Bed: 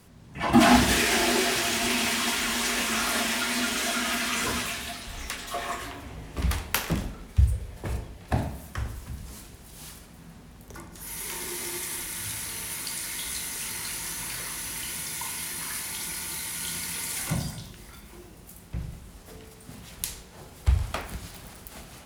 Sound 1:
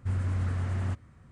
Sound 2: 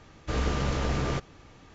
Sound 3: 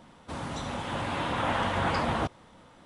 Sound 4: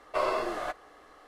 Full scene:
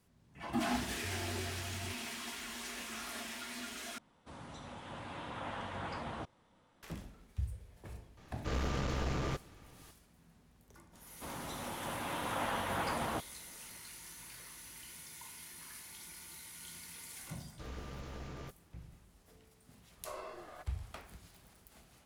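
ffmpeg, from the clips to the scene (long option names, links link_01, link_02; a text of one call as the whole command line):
ffmpeg -i bed.wav -i cue0.wav -i cue1.wav -i cue2.wav -i cue3.wav -filter_complex "[3:a]asplit=2[link_01][link_02];[2:a]asplit=2[link_03][link_04];[0:a]volume=-17dB[link_05];[link_03]aeval=exprs='clip(val(0),-1,0.0398)':channel_layout=same[link_06];[link_02]equalizer=frequency=92:width=0.64:gain=-5[link_07];[link_05]asplit=2[link_08][link_09];[link_08]atrim=end=3.984[link_10];[link_01]atrim=end=2.85,asetpts=PTS-STARTPTS,volume=-14dB[link_11];[link_09]atrim=start=6.826[link_12];[1:a]atrim=end=1.31,asetpts=PTS-STARTPTS,volume=-15dB,afade=type=in:duration=0.004:curve=hsin,afade=type=out:start_time=1.306:duration=0.004:curve=hsin,adelay=980[link_13];[link_06]atrim=end=1.74,asetpts=PTS-STARTPTS,volume=-6dB,afade=type=in:duration=0.004:curve=hsin,afade=type=out:start_time=1.736:duration=0.004:curve=hsin,adelay=8170[link_14];[link_07]atrim=end=2.85,asetpts=PTS-STARTPTS,volume=-7.5dB,afade=type=in:duration=0.004:curve=hsin,afade=type=out:start_time=2.846:duration=0.004:curve=hsin,adelay=10930[link_15];[link_04]atrim=end=1.74,asetpts=PTS-STARTPTS,volume=-18dB,afade=type=in:duration=0.004:curve=hsin,afade=type=out:start_time=1.736:duration=0.004:curve=hsin,adelay=17310[link_16];[4:a]atrim=end=1.27,asetpts=PTS-STARTPTS,volume=-17.5dB,afade=type=in:duration=0.004:curve=hsin,afade=type=out:start_time=1.266:duration=0.004:curve=hsin,adelay=19910[link_17];[link_10][link_11]acrossfade=duration=0.004:curve1=hsin:curve2=hsin[link_18];[link_18][link_12]acrossfade=duration=0.004:curve1=hsin:curve2=hsin[link_19];[link_19][link_13][link_14][link_15][link_16][link_17]amix=inputs=6:normalize=0" out.wav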